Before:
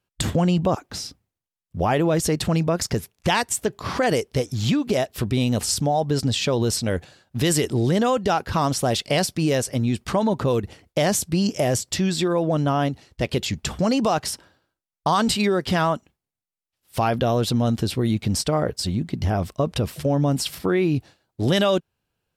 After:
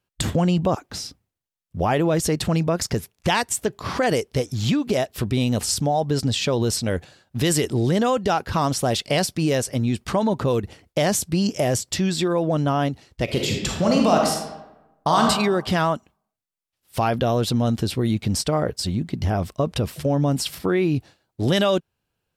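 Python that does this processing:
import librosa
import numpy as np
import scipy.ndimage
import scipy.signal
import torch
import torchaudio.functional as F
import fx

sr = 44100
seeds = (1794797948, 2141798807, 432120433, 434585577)

y = fx.reverb_throw(x, sr, start_s=13.24, length_s=1.98, rt60_s=1.0, drr_db=0.0)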